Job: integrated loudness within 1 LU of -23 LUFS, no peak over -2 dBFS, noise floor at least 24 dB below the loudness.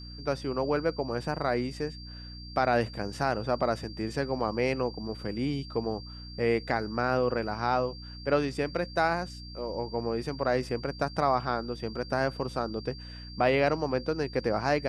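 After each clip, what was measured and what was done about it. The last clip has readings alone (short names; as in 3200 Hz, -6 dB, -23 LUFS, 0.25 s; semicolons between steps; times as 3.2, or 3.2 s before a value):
hum 60 Hz; harmonics up to 300 Hz; hum level -42 dBFS; steady tone 4700 Hz; tone level -46 dBFS; loudness -30.0 LUFS; peak -11.5 dBFS; loudness target -23.0 LUFS
-> notches 60/120/180/240/300 Hz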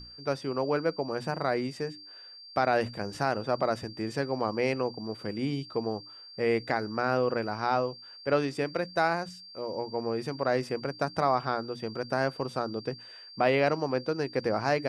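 hum none; steady tone 4700 Hz; tone level -46 dBFS
-> notch 4700 Hz, Q 30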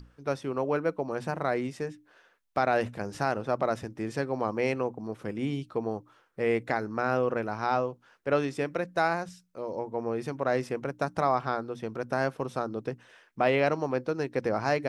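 steady tone none; loudness -30.5 LUFS; peak -11.0 dBFS; loudness target -23.0 LUFS
-> gain +7.5 dB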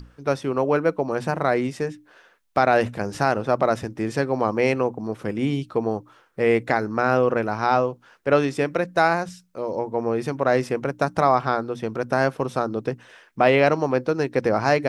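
loudness -23.0 LUFS; peak -3.5 dBFS; noise floor -57 dBFS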